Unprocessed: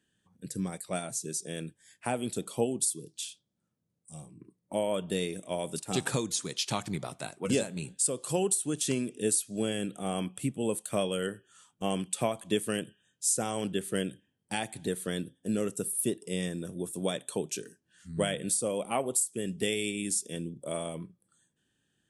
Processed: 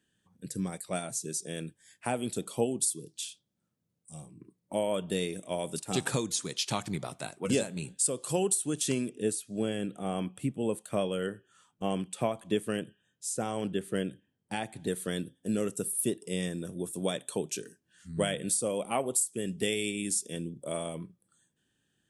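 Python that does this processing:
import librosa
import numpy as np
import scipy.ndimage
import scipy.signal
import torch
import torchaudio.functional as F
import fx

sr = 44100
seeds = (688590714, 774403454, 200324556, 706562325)

y = fx.high_shelf(x, sr, hz=3300.0, db=-9.0, at=(9.1, 14.87))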